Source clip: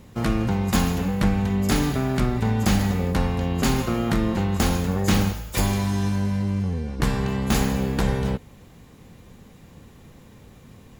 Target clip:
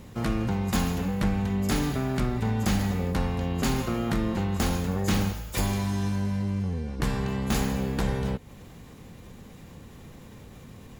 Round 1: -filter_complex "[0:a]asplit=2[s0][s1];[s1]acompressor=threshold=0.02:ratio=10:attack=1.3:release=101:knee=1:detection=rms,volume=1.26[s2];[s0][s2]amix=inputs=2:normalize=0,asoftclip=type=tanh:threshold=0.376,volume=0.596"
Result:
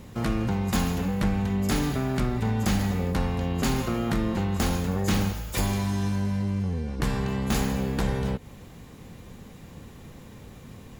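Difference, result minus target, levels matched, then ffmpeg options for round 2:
compression: peak gain reduction -8.5 dB
-filter_complex "[0:a]asplit=2[s0][s1];[s1]acompressor=threshold=0.00668:ratio=10:attack=1.3:release=101:knee=1:detection=rms,volume=1.26[s2];[s0][s2]amix=inputs=2:normalize=0,asoftclip=type=tanh:threshold=0.376,volume=0.596"

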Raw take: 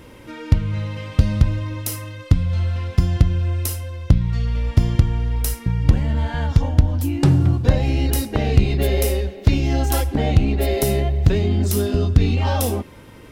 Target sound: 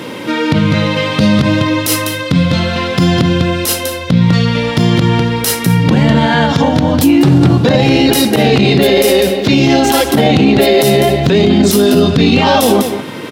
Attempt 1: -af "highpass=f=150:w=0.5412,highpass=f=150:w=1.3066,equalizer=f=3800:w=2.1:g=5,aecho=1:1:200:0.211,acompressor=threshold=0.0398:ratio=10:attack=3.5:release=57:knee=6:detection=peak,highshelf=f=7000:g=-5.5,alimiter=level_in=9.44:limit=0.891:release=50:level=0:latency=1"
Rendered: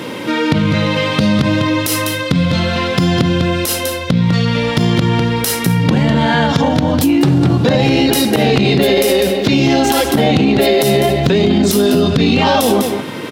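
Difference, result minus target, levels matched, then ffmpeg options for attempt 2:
compression: peak gain reduction +7.5 dB
-af "highpass=f=150:w=0.5412,highpass=f=150:w=1.3066,equalizer=f=3800:w=2.1:g=5,aecho=1:1:200:0.211,acompressor=threshold=0.106:ratio=10:attack=3.5:release=57:knee=6:detection=peak,highshelf=f=7000:g=-5.5,alimiter=level_in=9.44:limit=0.891:release=50:level=0:latency=1"

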